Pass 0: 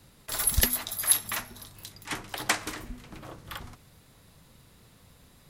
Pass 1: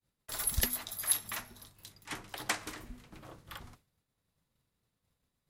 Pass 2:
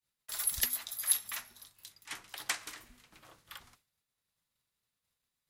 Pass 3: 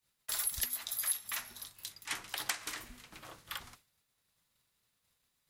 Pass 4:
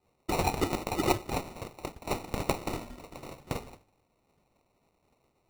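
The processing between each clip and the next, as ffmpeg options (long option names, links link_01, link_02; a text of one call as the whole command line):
ffmpeg -i in.wav -af "agate=range=-33dB:threshold=-44dB:ratio=3:detection=peak,volume=-7dB" out.wav
ffmpeg -i in.wav -af "tiltshelf=frequency=820:gain=-7.5,volume=-6.5dB" out.wav
ffmpeg -i in.wav -af "acompressor=threshold=-40dB:ratio=4,volume=7dB" out.wav
ffmpeg -i in.wav -af "bandreject=frequency=50:width_type=h:width=6,bandreject=frequency=100:width_type=h:width=6,acrusher=samples=27:mix=1:aa=0.000001,volume=7dB" out.wav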